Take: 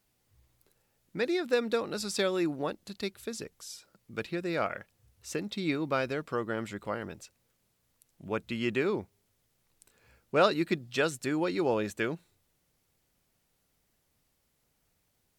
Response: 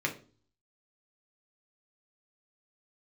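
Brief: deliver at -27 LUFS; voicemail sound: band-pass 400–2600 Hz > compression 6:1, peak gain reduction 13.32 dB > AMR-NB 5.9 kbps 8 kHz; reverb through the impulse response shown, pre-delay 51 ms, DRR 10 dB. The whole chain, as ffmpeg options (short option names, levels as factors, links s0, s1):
-filter_complex "[0:a]asplit=2[s0][s1];[1:a]atrim=start_sample=2205,adelay=51[s2];[s1][s2]afir=irnorm=-1:irlink=0,volume=0.133[s3];[s0][s3]amix=inputs=2:normalize=0,highpass=400,lowpass=2600,acompressor=threshold=0.0224:ratio=6,volume=5.01" -ar 8000 -c:a libopencore_amrnb -b:a 5900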